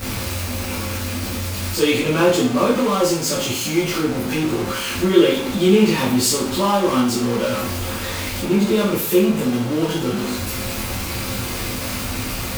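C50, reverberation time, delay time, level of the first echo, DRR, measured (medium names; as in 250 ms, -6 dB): 4.0 dB, 0.50 s, no echo, no echo, -8.0 dB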